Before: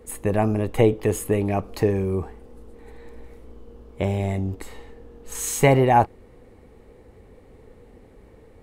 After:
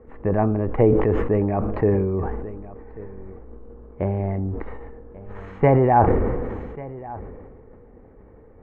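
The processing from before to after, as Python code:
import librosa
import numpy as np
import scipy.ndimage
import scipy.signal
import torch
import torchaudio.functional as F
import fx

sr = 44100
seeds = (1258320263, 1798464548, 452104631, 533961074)

y = scipy.signal.sosfilt(scipy.signal.butter(4, 1700.0, 'lowpass', fs=sr, output='sos'), x)
y = y + 10.0 ** (-19.0 / 20.0) * np.pad(y, (int(1140 * sr / 1000.0), 0))[:len(y)]
y = fx.sustainer(y, sr, db_per_s=30.0)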